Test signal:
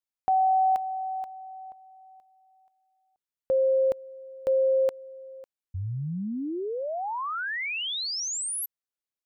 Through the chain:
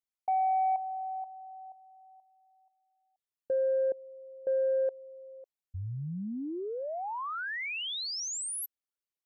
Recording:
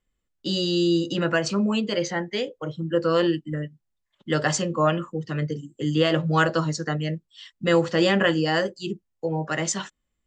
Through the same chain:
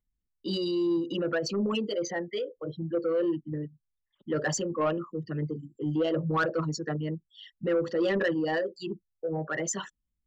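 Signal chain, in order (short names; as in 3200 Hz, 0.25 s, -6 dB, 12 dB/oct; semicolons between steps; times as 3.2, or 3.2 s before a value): formant sharpening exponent 2; soft clip -14.5 dBFS; gain -4.5 dB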